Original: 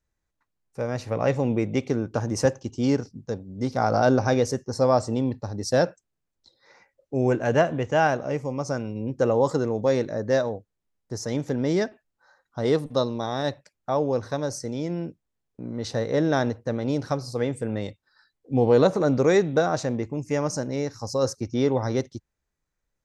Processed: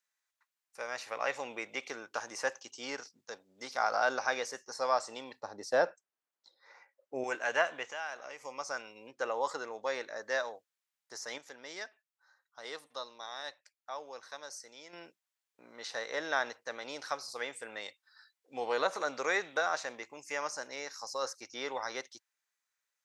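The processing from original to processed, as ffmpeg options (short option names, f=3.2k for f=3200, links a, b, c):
-filter_complex "[0:a]asettb=1/sr,asplit=3[a][b][c];[a]atrim=end=5.404[d];[b]atrim=start=5.4:end=7.24,asetpts=PTS-STARTPTS,afade=t=in:d=0.004:c=qsin,afade=t=out:st=1.836:d=0.004:c=qsin,tiltshelf=f=1.3k:g=9.5[e];[c]atrim=start=7.236[f];[d][e]acrossfade=d=0.004:c1=hsin:c2=qsin[g];[g][f]acrossfade=d=0.004:c1=qsin:c2=hsin,asettb=1/sr,asplit=3[h][i][j];[h]atrim=end=7.894[k];[i]atrim=start=7.89:end=8.44,asetpts=PTS-STARTPTS,afade=t=in:d=0.004:c=qsin,afade=t=out:st=0.546:d=0.004:c=qsin,acompressor=threshold=-31dB:ratio=4:attack=3.2:release=140:knee=1:detection=peak[l];[j]atrim=start=8.436[m];[k][l]acrossfade=d=0.004:c1=hsin:c2=qsin[n];[n][m]acrossfade=d=0.004:c1=qsin:c2=hsin,asettb=1/sr,asplit=3[o][p][q];[o]atrim=end=9.114[r];[p]atrim=start=9.11:end=10.16,asetpts=PTS-STARTPTS,afade=t=in:d=0.004:c=qsin,afade=t=out:st=1.046:d=0.004:c=qsin,highshelf=f=4.4k:g=-9[s];[q]atrim=start=10.156[t];[r][s]acrossfade=d=0.004:c1=hsin:c2=qsin[u];[u][t]acrossfade=d=0.004:c1=qsin:c2=hsin,asplit=3[v][w][x];[v]atrim=end=11.382[y];[w]atrim=start=11.378:end=14.932,asetpts=PTS-STARTPTS,volume=-8dB[z];[x]atrim=start=14.928[aa];[y][z]acrossfade=d=0.004:c1=hsin:c2=hsin[ab];[ab][aa]acrossfade=d=0.004:c1=hsin:c2=hsin,acrossover=split=2600[ac][ad];[ad]acompressor=threshold=-43dB:ratio=4:attack=1:release=60[ae];[ac][ae]amix=inputs=2:normalize=0,highpass=1.3k,volume=2dB"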